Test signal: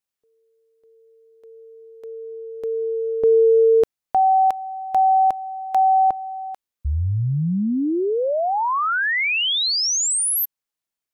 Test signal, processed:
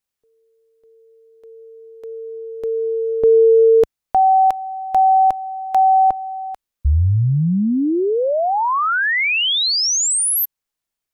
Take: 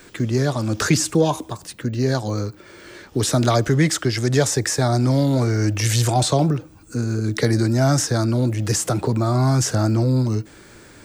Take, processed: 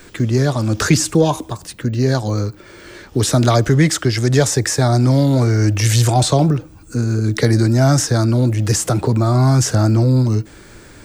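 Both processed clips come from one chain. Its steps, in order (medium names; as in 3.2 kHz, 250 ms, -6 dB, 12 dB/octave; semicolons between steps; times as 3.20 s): bass shelf 66 Hz +10 dB; trim +3 dB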